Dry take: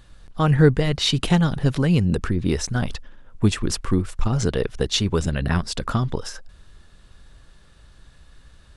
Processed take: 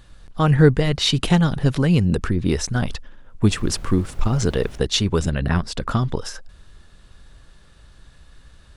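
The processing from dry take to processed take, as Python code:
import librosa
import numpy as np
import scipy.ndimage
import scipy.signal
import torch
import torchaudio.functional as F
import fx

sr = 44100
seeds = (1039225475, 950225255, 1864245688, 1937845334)

y = fx.dmg_noise_colour(x, sr, seeds[0], colour='brown', level_db=-35.0, at=(3.49, 4.77), fade=0.02)
y = fx.high_shelf(y, sr, hz=3900.0, db=-6.0, at=(5.3, 5.91))
y = F.gain(torch.from_numpy(y), 1.5).numpy()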